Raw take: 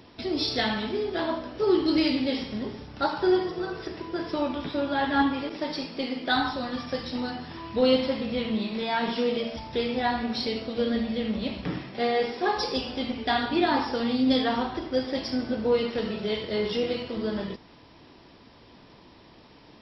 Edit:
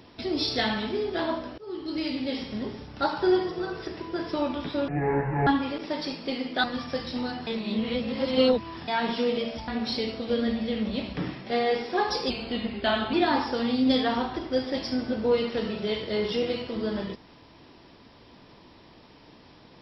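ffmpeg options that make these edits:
-filter_complex "[0:a]asplit=10[a][b][c][d][e][f][g][h][i][j];[a]atrim=end=1.58,asetpts=PTS-STARTPTS,afade=t=out:st=1.576:d=0.004:c=hsin:silence=0.0668344[k];[b]atrim=start=1.58:end=4.884,asetpts=PTS-STARTPTS,afade=t=in:d=1.05:silence=0.0668344[l];[c]atrim=start=4.88:end=5.18,asetpts=PTS-STARTPTS,asetrate=22491,aresample=44100,atrim=end_sample=25941,asetpts=PTS-STARTPTS[m];[d]atrim=start=5.176:end=6.352[n];[e]atrim=start=6.628:end=7.462[o];[f]atrim=start=7.458:end=8.872,asetpts=PTS-STARTPTS,areverse[p];[g]atrim=start=8.868:end=9.672[q];[h]atrim=start=10.158:end=12.784[r];[i]atrim=start=12.78:end=13.54,asetpts=PTS-STARTPTS,asetrate=40131,aresample=44100[s];[j]atrim=start=13.536[t];[k][l]concat=n=2:v=0:a=1[u];[u][m]acrossfade=d=0.004:c1=hsin:c2=hsin[v];[v][n]acrossfade=d=0.004:c1=hsin:c2=hsin[w];[w][o]acrossfade=d=0.004:c1=hsin:c2=hsin[x];[x][p]acrossfade=d=0.004:c1=hsin:c2=hsin[y];[y][q]acrossfade=d=0.004:c1=hsin:c2=hsin[z];[z][r]acrossfade=d=0.004:c1=hsin:c2=hsin[aa];[aa][s]acrossfade=d=0.004:c1=hsin:c2=hsin[ab];[ab][t]acrossfade=d=0.004:c1=hsin:c2=hsin"

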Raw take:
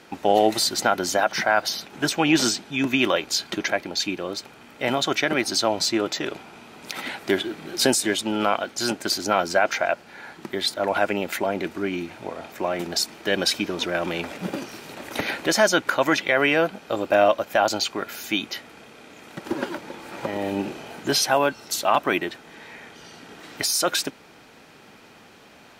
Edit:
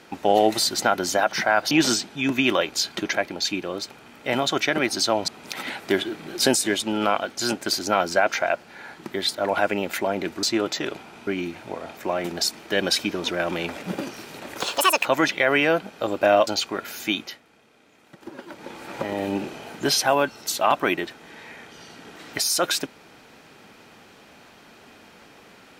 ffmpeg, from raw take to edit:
-filter_complex "[0:a]asplit=10[a][b][c][d][e][f][g][h][i][j];[a]atrim=end=1.712[k];[b]atrim=start=2.258:end=5.832[l];[c]atrim=start=6.668:end=11.822[m];[d]atrim=start=5.828:end=6.672[n];[e]atrim=start=11.818:end=15.154[o];[f]atrim=start=15.15:end=15.94,asetpts=PTS-STARTPTS,asetrate=77175,aresample=44100[p];[g]atrim=start=15.936:end=17.362[q];[h]atrim=start=17.708:end=18.65,asetpts=PTS-STARTPTS,afade=t=out:st=0.682:d=0.26:silence=0.251189[r];[i]atrim=start=18.65:end=19.69,asetpts=PTS-STARTPTS,volume=-12dB[s];[j]atrim=start=19.69,asetpts=PTS-STARTPTS,afade=t=in:d=0.26:silence=0.251189[t];[k][l]acrossfade=d=0.004:c1=hsin:c2=hsin[u];[u][m]acrossfade=d=0.004:c1=hsin:c2=hsin[v];[v][n]acrossfade=d=0.004:c1=hsin:c2=hsin[w];[w][o]acrossfade=d=0.004:c1=hsin:c2=hsin[x];[x][p]acrossfade=d=0.004:c1=hsin:c2=hsin[y];[y][q]acrossfade=d=0.004:c1=hsin:c2=hsin[z];[r][s][t]concat=n=3:v=0:a=1[aa];[z][aa]acrossfade=d=0.004:c1=hsin:c2=hsin"

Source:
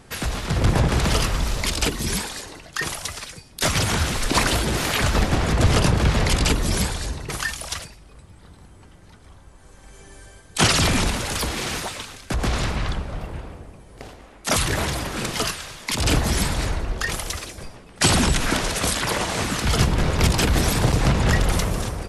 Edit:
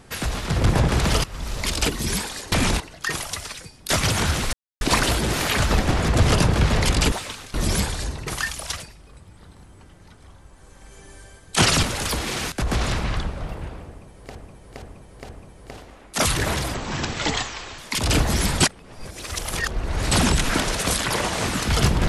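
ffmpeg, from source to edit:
-filter_complex "[0:a]asplit=16[a][b][c][d][e][f][g][h][i][j][k][l][m][n][o][p];[a]atrim=end=1.24,asetpts=PTS-STARTPTS,afade=t=out:st=1.236:d=0.004:c=hsin:silence=0.1[q];[b]atrim=start=1.24:end=2.522,asetpts=PTS-STARTPTS,afade=t=in:d=0.5:silence=0.1[r];[c]atrim=start=10.848:end=11.132[s];[d]atrim=start=2.518:end=4.25,asetpts=PTS-STARTPTS,afade=t=out:st=1.728:d=0.004:c=hsin,apad=pad_dur=0.28[t];[e]atrim=start=4.25:end=6.562,asetpts=PTS-STARTPTS,afade=t=in:d=0.004:c=hsin[u];[f]atrim=start=11.818:end=12.242[v];[g]atrim=start=6.558:end=10.852[w];[h]atrim=start=11.128:end=11.822[x];[i]atrim=start=12.238:end=14.072[y];[j]atrim=start=13.598:end=14.072[z];[k]atrim=start=13.598:end=14.072[aa];[l]atrim=start=13.598:end=15.054[ab];[m]atrim=start=15.05:end=15.75,asetpts=PTS-STARTPTS,asetrate=29547,aresample=44100[ac];[n]atrim=start=15.746:end=16.572[ad];[o]atrim=start=16.568:end=18.082,asetpts=PTS-STARTPTS,areverse[ae];[p]atrim=start=18.078[af];[q][r]concat=n=2:v=0:a=1[ag];[ag][s]acrossfade=d=0.004:c1=hsin:c2=hsin[ah];[t][u]concat=n=2:v=0:a=1[ai];[ah][ai]acrossfade=d=0.004:c1=hsin:c2=hsin[aj];[aj][v]acrossfade=d=0.004:c1=hsin:c2=hsin[ak];[ak][w]acrossfade=d=0.004:c1=hsin:c2=hsin[al];[al][x]acrossfade=d=0.004:c1=hsin:c2=hsin[am];[am][y]acrossfade=d=0.004:c1=hsin:c2=hsin[an];[an][z]acrossfade=d=0.004:c1=hsin:c2=hsin[ao];[ao][aa]acrossfade=d=0.004:c1=hsin:c2=hsin[ap];[ap][ab]acrossfade=d=0.004:c1=hsin:c2=hsin[aq];[aq][ac]acrossfade=d=0.004:c1=hsin:c2=hsin[ar];[ar][ad]acrossfade=d=0.004:c1=hsin:c2=hsin[as];[as][ae]acrossfade=d=0.004:c1=hsin:c2=hsin[at];[at][af]acrossfade=d=0.004:c1=hsin:c2=hsin"

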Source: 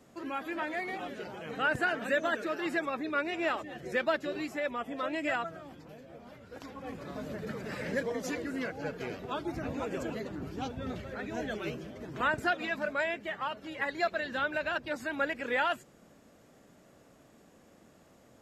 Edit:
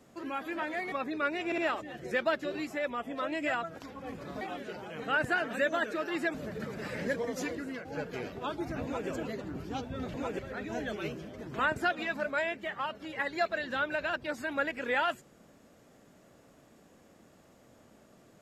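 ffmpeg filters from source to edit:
-filter_complex "[0:a]asplit=10[a][b][c][d][e][f][g][h][i][j];[a]atrim=end=0.922[k];[b]atrim=start=2.848:end=3.452[l];[c]atrim=start=3.388:end=3.452[m];[d]atrim=start=3.388:end=5.562[n];[e]atrim=start=6.548:end=7.212[o];[f]atrim=start=0.918:end=2.852[p];[g]atrim=start=7.208:end=8.72,asetpts=PTS-STARTPTS,afade=t=out:st=1.172:d=0.34:silence=0.398107[q];[h]atrim=start=8.72:end=11.012,asetpts=PTS-STARTPTS,afade=t=in:d=0.004:c=hsin:silence=0.398107[r];[i]atrim=start=9.708:end=9.962[s];[j]atrim=start=11.008[t];[k][l]acrossfade=d=0.004:c1=hsin:c2=hsin[u];[u][m]acrossfade=d=0.004:c1=hsin:c2=hsin[v];[v][n]acrossfade=d=0.004:c1=hsin:c2=hsin[w];[w][o]acrossfade=d=0.004:c1=hsin:c2=hsin[x];[x][p]acrossfade=d=0.004:c1=hsin:c2=hsin[y];[q][r]concat=n=2:v=0:a=1[z];[y][z]acrossfade=d=0.004:c1=hsin:c2=hsin[aa];[aa][s]acrossfade=d=0.004:c1=hsin:c2=hsin[ab];[ab][t]acrossfade=d=0.004:c1=hsin:c2=hsin"

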